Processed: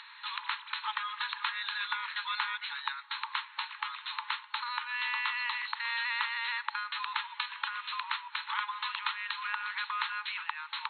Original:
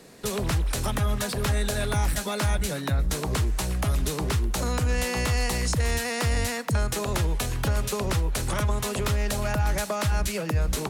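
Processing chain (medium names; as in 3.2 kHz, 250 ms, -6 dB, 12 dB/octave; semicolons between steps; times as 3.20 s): FFT band-pass 850–4300 Hz; upward compressor, threshold -43 dBFS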